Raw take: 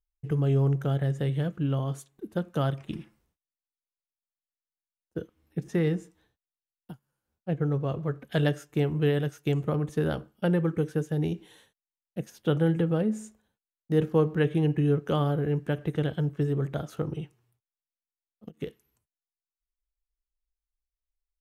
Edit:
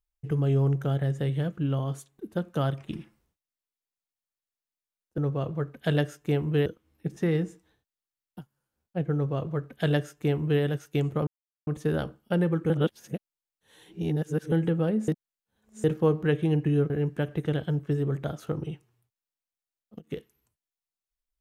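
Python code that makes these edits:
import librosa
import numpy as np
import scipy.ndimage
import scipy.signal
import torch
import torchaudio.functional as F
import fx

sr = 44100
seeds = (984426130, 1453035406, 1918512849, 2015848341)

y = fx.edit(x, sr, fx.duplicate(start_s=7.66, length_s=1.48, to_s=5.18),
    fx.insert_silence(at_s=9.79, length_s=0.4),
    fx.reverse_span(start_s=10.82, length_s=1.82),
    fx.reverse_span(start_s=13.2, length_s=0.76),
    fx.cut(start_s=15.02, length_s=0.38), tone=tone)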